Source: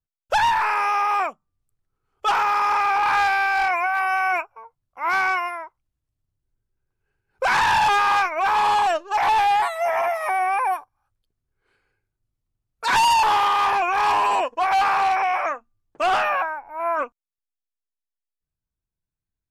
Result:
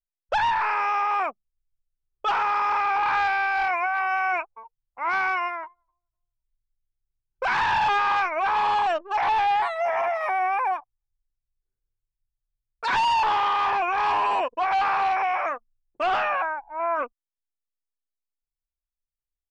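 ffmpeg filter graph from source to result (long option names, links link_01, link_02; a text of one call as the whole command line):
ffmpeg -i in.wav -filter_complex "[0:a]asettb=1/sr,asplit=3[link_01][link_02][link_03];[link_01]atrim=end=5.374[link_04];[link_02]atrim=start=5.37:end=7.6,asetpts=PTS-STARTPTS,afade=type=in:duration=0.004:curve=qsin,afade=type=out:start_time=2.226:duration=0.004:curve=qsin,equalizer=frequency=560:width_type=o:width=0.33:gain=-7,asplit=2[link_05][link_06];[link_06]adelay=256,lowpass=frequency=1600:poles=1,volume=-19dB,asplit=2[link_07][link_08];[link_08]adelay=256,lowpass=frequency=1600:poles=1,volume=0.4,asplit=2[link_09][link_10];[link_10]adelay=256,lowpass=frequency=1600:poles=1,volume=0.4[link_11];[link_05][link_07][link_09][link_11]amix=inputs=4:normalize=0,atrim=end_sample=98343[link_12];[link_03]atrim=start=7.596[link_13];[link_04][link_12]acrossfade=duration=0.004:curve1=hsin:curve2=qsin[link_14];[link_14][link_13]acrossfade=duration=0.004:curve1=qsin:curve2=hsin,lowpass=4100,anlmdn=1,alimiter=limit=-18.5dB:level=0:latency=1:release=32" out.wav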